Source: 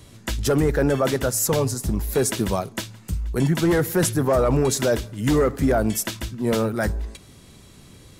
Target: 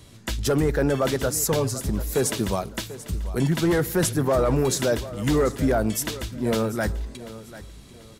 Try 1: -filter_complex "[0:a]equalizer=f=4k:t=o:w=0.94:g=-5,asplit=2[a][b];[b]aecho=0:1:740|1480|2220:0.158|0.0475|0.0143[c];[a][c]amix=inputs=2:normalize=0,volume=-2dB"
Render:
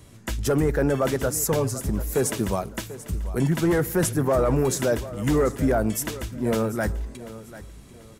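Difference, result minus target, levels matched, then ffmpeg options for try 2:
4000 Hz band -5.0 dB
-filter_complex "[0:a]equalizer=f=4k:t=o:w=0.94:g=2,asplit=2[a][b];[b]aecho=0:1:740|1480|2220:0.158|0.0475|0.0143[c];[a][c]amix=inputs=2:normalize=0,volume=-2dB"

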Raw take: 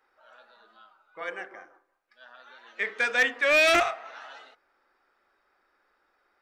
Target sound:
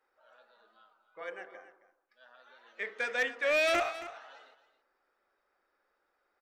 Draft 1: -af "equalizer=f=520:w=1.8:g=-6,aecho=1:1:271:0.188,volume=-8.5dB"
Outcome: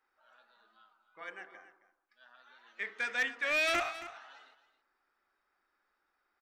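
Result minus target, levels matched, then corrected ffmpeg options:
500 Hz band -6.5 dB
-af "equalizer=f=520:w=1.8:g=5,aecho=1:1:271:0.188,volume=-8.5dB"

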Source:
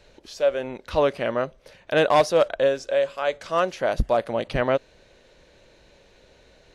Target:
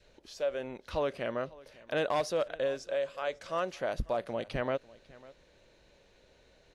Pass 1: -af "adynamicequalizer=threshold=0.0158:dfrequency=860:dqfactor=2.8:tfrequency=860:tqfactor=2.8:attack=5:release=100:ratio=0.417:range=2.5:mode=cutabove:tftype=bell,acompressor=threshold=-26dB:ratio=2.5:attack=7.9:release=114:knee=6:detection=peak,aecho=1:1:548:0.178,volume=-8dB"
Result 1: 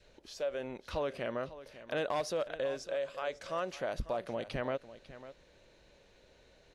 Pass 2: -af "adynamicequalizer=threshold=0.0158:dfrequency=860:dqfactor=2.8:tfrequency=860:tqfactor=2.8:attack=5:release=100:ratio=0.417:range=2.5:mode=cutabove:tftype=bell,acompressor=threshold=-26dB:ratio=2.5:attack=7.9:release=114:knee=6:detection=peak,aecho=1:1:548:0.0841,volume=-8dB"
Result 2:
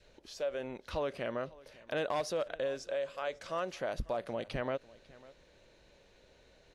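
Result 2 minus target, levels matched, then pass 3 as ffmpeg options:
compressor: peak gain reduction +4 dB
-af "adynamicequalizer=threshold=0.0158:dfrequency=860:dqfactor=2.8:tfrequency=860:tqfactor=2.8:attack=5:release=100:ratio=0.417:range=2.5:mode=cutabove:tftype=bell,acompressor=threshold=-19.5dB:ratio=2.5:attack=7.9:release=114:knee=6:detection=peak,aecho=1:1:548:0.0841,volume=-8dB"

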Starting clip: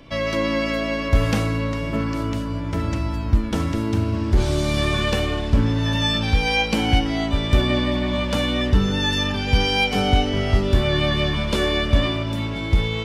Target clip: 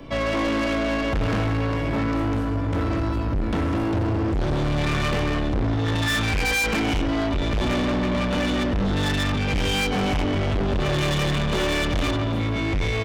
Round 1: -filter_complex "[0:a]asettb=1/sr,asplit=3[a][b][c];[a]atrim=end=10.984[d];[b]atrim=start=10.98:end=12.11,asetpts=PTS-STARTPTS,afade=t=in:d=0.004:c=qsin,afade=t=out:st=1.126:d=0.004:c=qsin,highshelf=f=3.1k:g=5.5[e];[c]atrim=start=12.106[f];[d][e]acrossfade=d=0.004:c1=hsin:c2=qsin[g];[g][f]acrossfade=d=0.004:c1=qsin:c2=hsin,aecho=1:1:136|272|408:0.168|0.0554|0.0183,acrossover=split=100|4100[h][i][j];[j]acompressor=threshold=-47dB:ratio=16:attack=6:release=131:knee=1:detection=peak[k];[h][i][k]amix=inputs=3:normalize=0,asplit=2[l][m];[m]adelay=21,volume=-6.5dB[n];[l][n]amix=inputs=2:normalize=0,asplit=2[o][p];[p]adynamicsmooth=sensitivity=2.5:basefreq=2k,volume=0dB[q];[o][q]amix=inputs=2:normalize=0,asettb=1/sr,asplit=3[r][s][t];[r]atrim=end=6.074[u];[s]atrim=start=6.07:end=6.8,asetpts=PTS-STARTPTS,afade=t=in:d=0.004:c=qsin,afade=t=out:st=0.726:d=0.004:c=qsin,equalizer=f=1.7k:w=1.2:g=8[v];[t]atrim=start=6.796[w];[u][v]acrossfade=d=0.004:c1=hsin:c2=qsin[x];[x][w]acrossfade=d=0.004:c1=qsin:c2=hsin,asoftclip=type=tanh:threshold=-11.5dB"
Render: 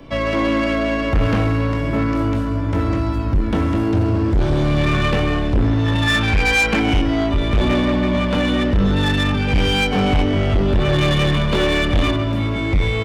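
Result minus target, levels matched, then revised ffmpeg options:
soft clip: distortion -5 dB
-filter_complex "[0:a]asettb=1/sr,asplit=3[a][b][c];[a]atrim=end=10.984[d];[b]atrim=start=10.98:end=12.11,asetpts=PTS-STARTPTS,afade=t=in:d=0.004:c=qsin,afade=t=out:st=1.126:d=0.004:c=qsin,highshelf=f=3.1k:g=5.5[e];[c]atrim=start=12.106[f];[d][e]acrossfade=d=0.004:c1=hsin:c2=qsin[g];[g][f]acrossfade=d=0.004:c1=qsin:c2=hsin,aecho=1:1:136|272|408:0.168|0.0554|0.0183,acrossover=split=100|4100[h][i][j];[j]acompressor=threshold=-47dB:ratio=16:attack=6:release=131:knee=1:detection=peak[k];[h][i][k]amix=inputs=3:normalize=0,asplit=2[l][m];[m]adelay=21,volume=-6.5dB[n];[l][n]amix=inputs=2:normalize=0,asplit=2[o][p];[p]adynamicsmooth=sensitivity=2.5:basefreq=2k,volume=0dB[q];[o][q]amix=inputs=2:normalize=0,asettb=1/sr,asplit=3[r][s][t];[r]atrim=end=6.074[u];[s]atrim=start=6.07:end=6.8,asetpts=PTS-STARTPTS,afade=t=in:d=0.004:c=qsin,afade=t=out:st=0.726:d=0.004:c=qsin,equalizer=f=1.7k:w=1.2:g=8[v];[t]atrim=start=6.796[w];[u][v]acrossfade=d=0.004:c1=hsin:c2=qsin[x];[x][w]acrossfade=d=0.004:c1=qsin:c2=hsin,asoftclip=type=tanh:threshold=-20.5dB"

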